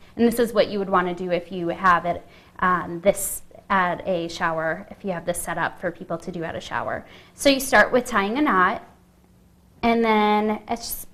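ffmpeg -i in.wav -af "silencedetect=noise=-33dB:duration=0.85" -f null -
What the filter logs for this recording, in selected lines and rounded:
silence_start: 8.80
silence_end: 9.83 | silence_duration: 1.03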